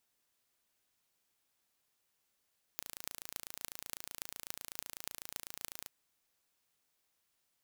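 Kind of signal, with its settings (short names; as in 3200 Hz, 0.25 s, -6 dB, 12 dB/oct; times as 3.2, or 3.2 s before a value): pulse train 28/s, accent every 8, -11 dBFS 3.08 s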